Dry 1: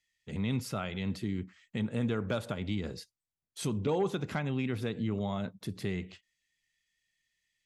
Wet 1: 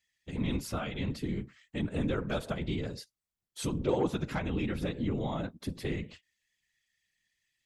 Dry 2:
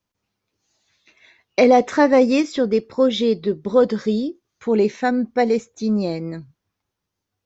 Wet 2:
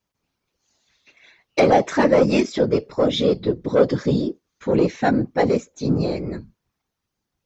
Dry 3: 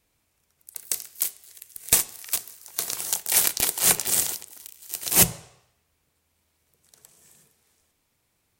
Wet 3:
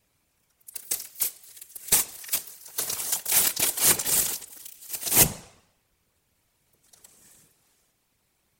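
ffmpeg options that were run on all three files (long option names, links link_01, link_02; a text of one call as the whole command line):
ffmpeg -i in.wav -af "acontrast=66,afftfilt=real='hypot(re,im)*cos(2*PI*random(0))':imag='hypot(re,im)*sin(2*PI*random(1))':win_size=512:overlap=0.75" out.wav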